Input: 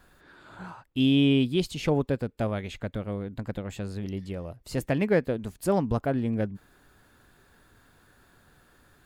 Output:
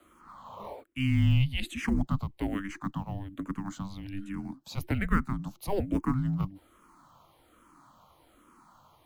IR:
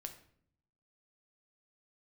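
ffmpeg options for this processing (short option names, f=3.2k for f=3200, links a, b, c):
-filter_complex "[0:a]highpass=50,equalizer=f=1.3k:w=1.4:g=7.5,afreqshift=-390,acrossover=split=100|420|4300[a][b][c][d];[c]acrusher=bits=6:mode=log:mix=0:aa=0.000001[e];[a][b][e][d]amix=inputs=4:normalize=0,asplit=2[f][g];[g]afreqshift=-1.2[h];[f][h]amix=inputs=2:normalize=1"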